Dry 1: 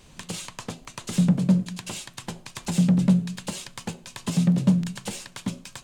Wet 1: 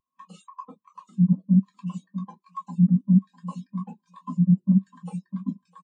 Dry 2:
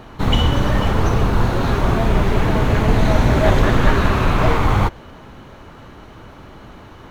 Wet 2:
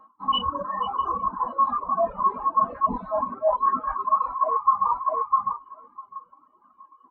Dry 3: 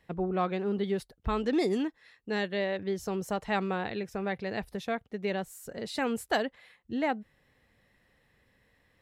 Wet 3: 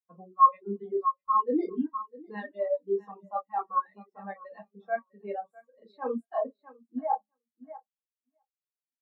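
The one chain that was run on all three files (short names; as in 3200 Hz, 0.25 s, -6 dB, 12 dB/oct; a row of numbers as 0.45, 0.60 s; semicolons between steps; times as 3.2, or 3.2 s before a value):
reverb removal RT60 1.5 s; HPF 480 Hz 6 dB/oct; bell 1100 Hz +12.5 dB 0.35 oct; shoebox room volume 240 m³, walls furnished, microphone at 2.1 m; reverb removal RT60 0.9 s; on a send: feedback echo 0.653 s, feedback 23%, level -11 dB; on the sum: dynamic EQ 780 Hz, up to +3 dB, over -28 dBFS, Q 1.3; reverse; compressor 16:1, threshold -26 dBFS; reverse; spectral expander 2.5:1; normalise peaks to -9 dBFS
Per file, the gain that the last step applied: +6.5, +7.0, +8.0 dB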